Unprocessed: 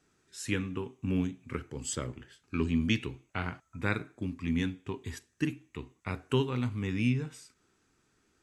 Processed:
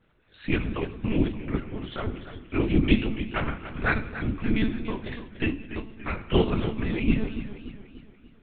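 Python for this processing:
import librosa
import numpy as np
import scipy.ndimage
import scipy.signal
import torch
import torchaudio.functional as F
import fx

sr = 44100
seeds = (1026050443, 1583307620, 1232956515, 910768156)

y = fx.level_steps(x, sr, step_db=11, at=(6.6, 7.07), fade=0.02)
y = fx.whisperise(y, sr, seeds[0])
y = fx.harmonic_tremolo(y, sr, hz=5.8, depth_pct=50, crossover_hz=540.0)
y = fx.quant_float(y, sr, bits=4)
y = fx.rev_fdn(y, sr, rt60_s=0.93, lf_ratio=1.2, hf_ratio=0.9, size_ms=40.0, drr_db=9.5)
y = fx.lpc_monotone(y, sr, seeds[1], pitch_hz=220.0, order=10)
y = fx.echo_warbled(y, sr, ms=289, feedback_pct=48, rate_hz=2.8, cents=96, wet_db=-12.0)
y = y * librosa.db_to_amplitude(8.0)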